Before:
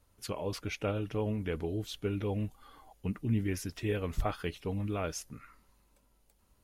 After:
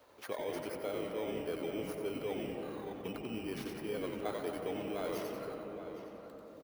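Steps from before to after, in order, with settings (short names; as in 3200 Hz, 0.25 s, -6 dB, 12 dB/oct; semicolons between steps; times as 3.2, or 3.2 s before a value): FFT order left unsorted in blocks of 16 samples; tone controls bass -15 dB, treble -12 dB; frequency-shifting echo 91 ms, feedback 42%, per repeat -140 Hz, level -5 dB; reverse; compressor, threshold -39 dBFS, peak gain reduction 10 dB; reverse; HPF 190 Hz 6 dB/oct; bell 540 Hz +4 dB 1.4 oct; outdoor echo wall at 140 m, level -12 dB; on a send at -5.5 dB: reverb RT60 3.1 s, pre-delay 0.115 s; on the sum: three-band squash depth 40%; gain +2 dB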